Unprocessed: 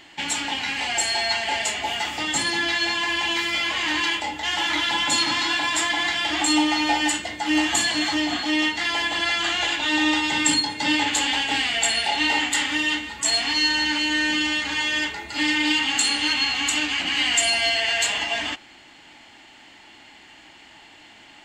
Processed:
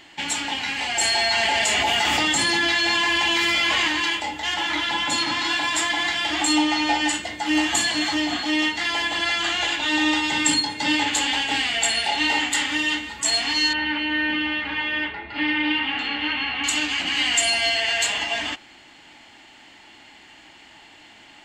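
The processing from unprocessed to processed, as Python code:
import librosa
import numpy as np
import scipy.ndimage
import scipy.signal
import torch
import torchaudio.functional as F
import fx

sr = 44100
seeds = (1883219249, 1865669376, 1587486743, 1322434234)

y = fx.env_flatten(x, sr, amount_pct=100, at=(1.01, 3.88))
y = fx.high_shelf(y, sr, hz=4400.0, db=-5.5, at=(4.54, 5.45))
y = fx.lowpass(y, sr, hz=8500.0, slope=12, at=(6.56, 7.13))
y = fx.lowpass(y, sr, hz=3000.0, slope=24, at=(13.73, 16.64))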